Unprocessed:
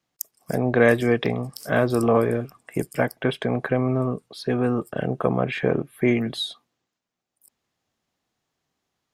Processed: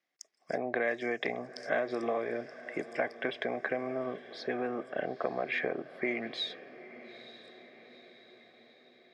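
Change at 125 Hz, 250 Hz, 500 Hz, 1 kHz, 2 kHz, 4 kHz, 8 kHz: −26.0 dB, −15.5 dB, −11.0 dB, −8.5 dB, −6.5 dB, −7.5 dB, below −15 dB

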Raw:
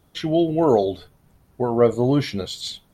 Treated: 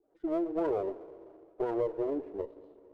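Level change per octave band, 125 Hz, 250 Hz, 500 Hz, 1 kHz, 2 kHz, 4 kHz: −26.0 dB, −13.0 dB, −12.0 dB, −13.5 dB, −15.5 dB, below −30 dB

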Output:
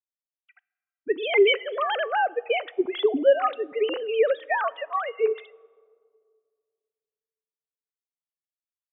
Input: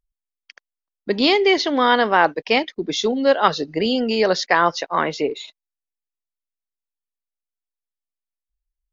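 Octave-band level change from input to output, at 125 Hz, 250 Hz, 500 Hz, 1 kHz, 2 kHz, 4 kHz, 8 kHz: below −30 dB, −11.0 dB, −2.5 dB, −8.0 dB, −6.5 dB, −9.0 dB, can't be measured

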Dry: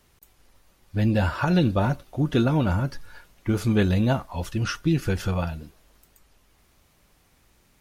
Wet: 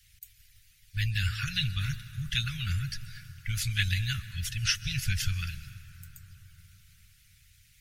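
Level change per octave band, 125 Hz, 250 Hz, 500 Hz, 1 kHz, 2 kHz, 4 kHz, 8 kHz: −6.5 dB, −20.5 dB, below −40 dB, −18.0 dB, −0.5 dB, +5.5 dB, +6.0 dB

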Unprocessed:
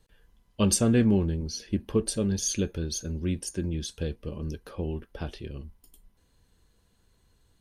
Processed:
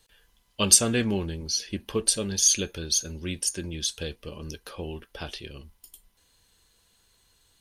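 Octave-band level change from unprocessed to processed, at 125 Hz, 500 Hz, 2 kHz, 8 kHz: −5.5, −1.5, +6.0, +9.5 decibels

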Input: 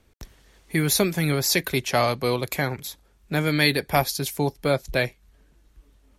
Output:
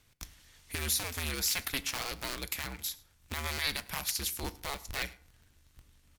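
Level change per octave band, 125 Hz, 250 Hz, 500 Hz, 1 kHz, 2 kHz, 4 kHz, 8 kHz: −17.0, −19.5, −21.0, −14.0, −10.5, −7.0, −5.0 decibels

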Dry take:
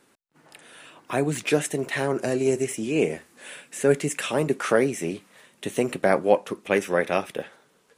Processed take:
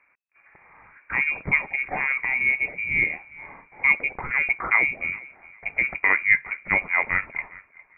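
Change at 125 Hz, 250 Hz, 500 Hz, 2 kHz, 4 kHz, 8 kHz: −9.5 dB, −15.0 dB, −18.5 dB, +11.5 dB, below −15 dB, below −40 dB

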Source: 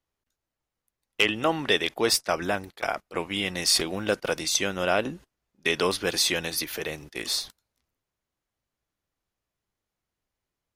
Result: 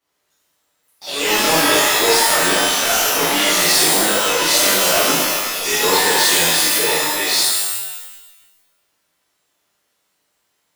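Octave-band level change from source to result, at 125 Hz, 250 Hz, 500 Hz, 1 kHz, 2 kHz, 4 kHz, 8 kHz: +4.5, +7.5, +8.0, +13.5, +11.5, +12.0, +15.0 decibels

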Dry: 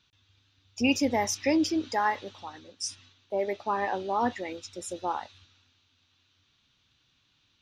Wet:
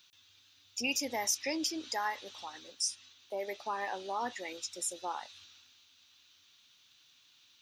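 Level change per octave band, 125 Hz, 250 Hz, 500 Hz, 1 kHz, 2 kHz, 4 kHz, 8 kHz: below −15 dB, −13.0 dB, −9.5 dB, −8.0 dB, −5.0 dB, −0.5 dB, +1.5 dB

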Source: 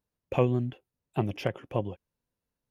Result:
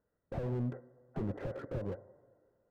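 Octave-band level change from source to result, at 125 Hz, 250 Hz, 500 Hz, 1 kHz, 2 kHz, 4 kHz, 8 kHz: −7.5 dB, −7.5 dB, −9.5 dB, −13.5 dB, −11.5 dB, below −15 dB, can't be measured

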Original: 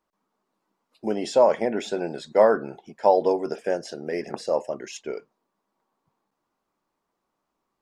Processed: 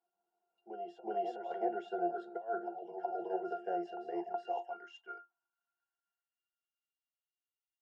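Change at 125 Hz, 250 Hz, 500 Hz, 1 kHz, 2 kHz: below −20 dB, −12.5 dB, −17.0 dB, −10.0 dB, −15.0 dB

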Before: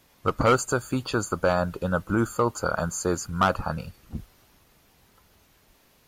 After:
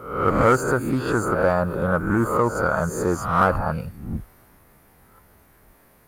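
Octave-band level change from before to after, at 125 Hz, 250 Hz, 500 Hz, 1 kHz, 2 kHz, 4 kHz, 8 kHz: +4.5, +4.5, +4.5, +4.5, +4.5, −5.5, −3.5 decibels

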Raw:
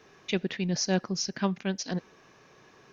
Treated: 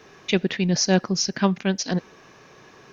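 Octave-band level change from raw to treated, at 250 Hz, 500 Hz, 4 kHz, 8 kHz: +7.5 dB, +7.5 dB, +7.5 dB, can't be measured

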